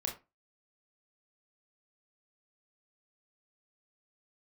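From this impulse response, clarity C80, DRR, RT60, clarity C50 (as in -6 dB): 16.5 dB, 0.5 dB, 0.25 s, 10.0 dB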